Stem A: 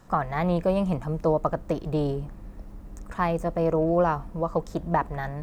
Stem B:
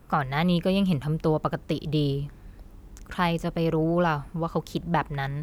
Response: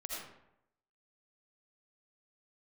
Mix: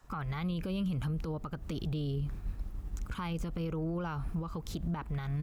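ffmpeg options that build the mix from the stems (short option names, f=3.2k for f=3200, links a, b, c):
-filter_complex "[0:a]acompressor=threshold=-32dB:ratio=5,highpass=660,acontrast=50,volume=-13dB,asplit=2[a][b];[1:a]agate=range=-33dB:threshold=-42dB:ratio=3:detection=peak,lowshelf=f=120:g=11.5,volume=-1,adelay=1.2,volume=0dB[c];[b]apad=whole_len=239508[d];[c][d]sidechaincompress=threshold=-53dB:ratio=12:attack=23:release=172[e];[a][e]amix=inputs=2:normalize=0,alimiter=level_in=3dB:limit=-24dB:level=0:latency=1:release=92,volume=-3dB"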